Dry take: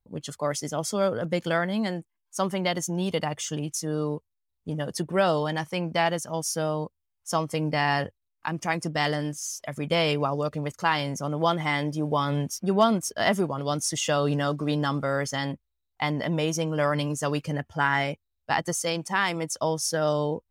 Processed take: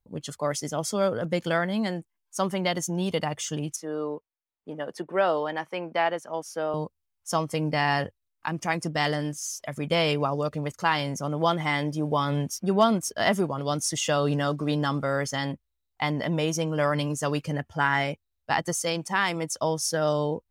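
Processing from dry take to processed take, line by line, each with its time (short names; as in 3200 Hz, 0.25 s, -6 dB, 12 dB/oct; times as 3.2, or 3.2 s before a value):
3.76–6.74 three-band isolator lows -20 dB, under 260 Hz, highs -14 dB, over 2900 Hz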